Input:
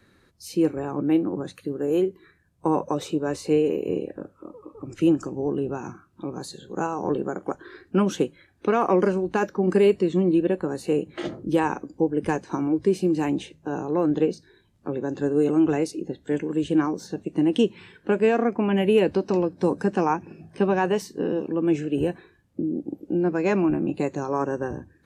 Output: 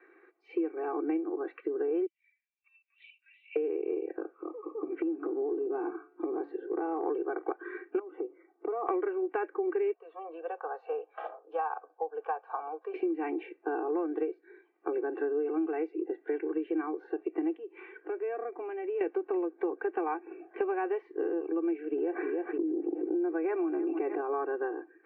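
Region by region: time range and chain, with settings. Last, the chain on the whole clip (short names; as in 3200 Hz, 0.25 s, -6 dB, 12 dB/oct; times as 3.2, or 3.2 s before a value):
2.06–3.56 steep high-pass 2500 Hz 48 dB/oct + LPC vocoder at 8 kHz pitch kept
4.71–7.06 tilt -4 dB/oct + de-hum 143.7 Hz, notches 18 + compressor, threshold -24 dBFS
7.99–8.87 polynomial smoothing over 65 samples + compressor 5:1, threshold -31 dBFS
9.93–12.94 inverse Chebyshev high-pass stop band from 220 Hz + fixed phaser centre 860 Hz, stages 4
17.55–19.01 bell 2300 Hz -3.5 dB 1.9 oct + compressor 2.5:1, threshold -41 dBFS
21.91–24.21 air absorption 410 m + feedback echo 0.305 s, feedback 48%, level -22 dB + fast leveller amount 70%
whole clip: Chebyshev band-pass 330–2400 Hz, order 4; comb 2.6 ms, depth 95%; compressor 6:1, threshold -29 dBFS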